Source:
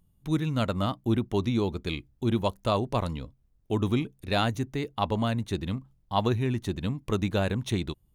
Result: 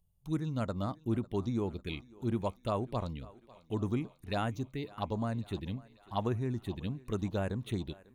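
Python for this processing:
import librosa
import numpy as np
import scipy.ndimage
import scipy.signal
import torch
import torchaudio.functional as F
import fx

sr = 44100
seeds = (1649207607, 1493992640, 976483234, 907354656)

y = fx.env_phaser(x, sr, low_hz=270.0, high_hz=4400.0, full_db=-21.0)
y = fx.echo_thinned(y, sr, ms=547, feedback_pct=64, hz=320.0, wet_db=-20.0)
y = y * librosa.db_to_amplitude(-6.5)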